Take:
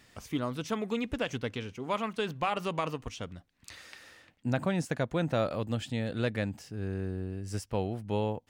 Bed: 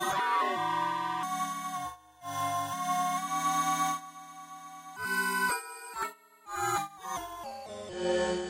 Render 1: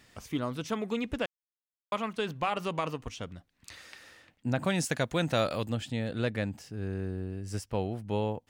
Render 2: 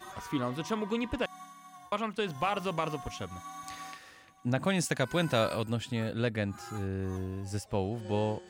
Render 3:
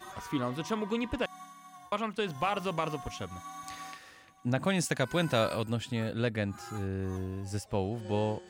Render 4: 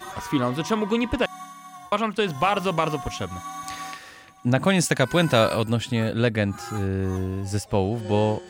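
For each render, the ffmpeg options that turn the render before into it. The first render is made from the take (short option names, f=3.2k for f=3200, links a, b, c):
-filter_complex "[0:a]asettb=1/sr,asplit=3[a][b][c];[a]atrim=end=4.644[d];[b]atrim=start=4.64:end=5.7,asetpts=PTS-STARTPTS,afade=t=in:d=0.004:c=qsin,afade=t=out:st=1.056:d=0.004:c=qsin,highshelf=f=2.1k:g=11[e];[c]atrim=start=5.696[f];[d][e]acrossfade=d=0.004:c1=hsin:c2=qsin[g];[g][f]acrossfade=d=0.004:c1=qsin:c2=hsin,asplit=3[h][i][j];[h]atrim=end=1.26,asetpts=PTS-STARTPTS,afade=t=out:st=1.256:d=0.004:c=hsin[k];[i]atrim=start=1.26:end=1.92,asetpts=PTS-STARTPTS,volume=0[l];[j]atrim=start=1.92,asetpts=PTS-STARTPTS,afade=t=in:d=0.004:c=hsin[m];[k][l][m]concat=n=3:v=0:a=1"
-filter_complex "[1:a]volume=-15.5dB[a];[0:a][a]amix=inputs=2:normalize=0"
-af anull
-af "volume=9dB"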